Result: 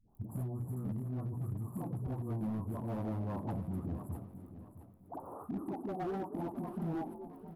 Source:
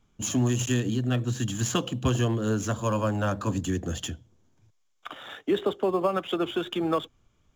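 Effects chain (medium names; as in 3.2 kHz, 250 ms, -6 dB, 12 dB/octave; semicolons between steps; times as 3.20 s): crackle 14 per s -47 dBFS; in parallel at 0 dB: compression, threshold -38 dBFS, peak gain reduction 17 dB; on the sum: frequency-shifting echo 230 ms, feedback 52%, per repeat +55 Hz, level -19.5 dB; formant shift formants -6 st; peak limiter -23.5 dBFS, peak gain reduction 11 dB; inverse Chebyshev band-stop 2.1–5.3 kHz, stop band 60 dB; bass shelf 72 Hz -9 dB; hum notches 60/120/180/240/300 Hz; phase dispersion highs, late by 93 ms, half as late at 500 Hz; hard clipper -29.5 dBFS, distortion -14 dB; peaking EQ 510 Hz -4.5 dB 0.51 oct; feedback delay 662 ms, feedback 32%, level -13 dB; trim -3 dB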